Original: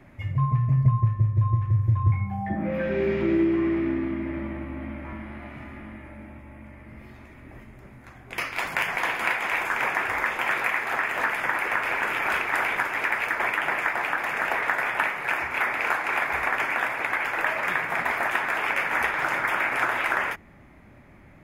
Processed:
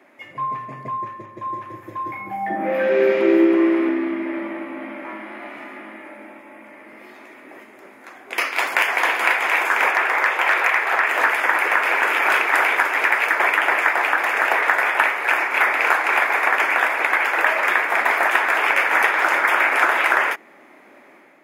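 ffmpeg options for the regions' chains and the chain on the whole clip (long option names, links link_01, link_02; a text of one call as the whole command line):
ffmpeg -i in.wav -filter_complex "[0:a]asettb=1/sr,asplit=3[link_01][link_02][link_03];[link_01]atrim=end=1.264[link_04];[link_02]atrim=start=1.26:end=3.89,asetpts=PTS-STARTPTS,afade=type=in:duration=0.004:curve=qsin,afade=type=out:start_time=2.626:duration=0.004:curve=qsin,asplit=2[link_05][link_06];[link_06]adelay=207,lowpass=frequency=1600:poles=1,volume=-3.5dB,asplit=2[link_07][link_08];[link_08]adelay=207,lowpass=frequency=1600:poles=1,volume=0.34,asplit=2[link_09][link_10];[link_10]adelay=207,lowpass=frequency=1600:poles=1,volume=0.34,asplit=2[link_11][link_12];[link_12]adelay=207,lowpass=frequency=1600:poles=1,volume=0.34[link_13];[link_05][link_07][link_09][link_11][link_13]amix=inputs=5:normalize=0,atrim=end_sample=115983,adynamicequalizer=threshold=0.00158:dfrequency=7800:dqfactor=0.7:tfrequency=7800:tqfactor=0.7:attack=5:release=100:ratio=0.375:range=3:mode=boostabove:tftype=highshelf[link_14];[link_03]atrim=start=3.886[link_15];[link_04][link_14]acrossfade=duration=0.004:curve1=hsin:curve2=qsin[link_16];[link_16][link_15]acrossfade=duration=0.004:curve1=qsin:curve2=hsin,asettb=1/sr,asplit=3[link_17][link_18][link_19];[link_17]atrim=end=9.914[link_20];[link_18]atrim=start=9.91:end=11.07,asetpts=PTS-STARTPTS,afade=type=in:duration=0.004:curve=qsin,afade=type=out:start_time=1.156:duration=0.004:curve=qsin,volume=16.5dB,asoftclip=hard,volume=-16.5dB,bass=frequency=250:gain=-11,treble=frequency=4000:gain=-5[link_21];[link_19]atrim=start=11.066[link_22];[link_20][link_21]acrossfade=duration=0.004:curve1=hsin:curve2=qsin[link_23];[link_23][link_22]acrossfade=duration=0.004:curve1=qsin:curve2=hsin,highpass=frequency=310:width=0.5412,highpass=frequency=310:width=1.3066,dynaudnorm=framelen=130:gausssize=5:maxgain=5.5dB,volume=2.5dB" out.wav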